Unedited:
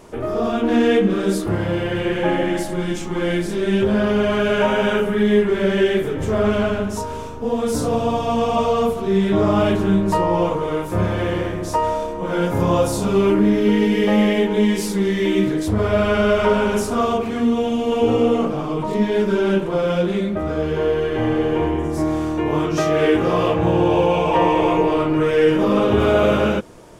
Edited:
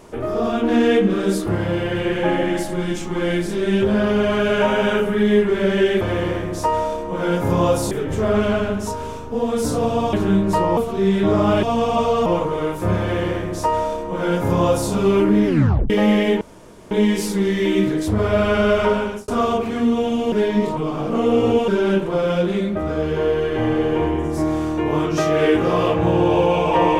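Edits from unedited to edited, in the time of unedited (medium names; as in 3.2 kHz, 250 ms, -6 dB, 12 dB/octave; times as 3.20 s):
8.23–8.86 s: swap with 9.72–10.36 s
11.11–13.01 s: copy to 6.01 s
13.56 s: tape stop 0.44 s
14.51 s: insert room tone 0.50 s
16.30–16.88 s: fade out equal-power
17.92–19.28 s: reverse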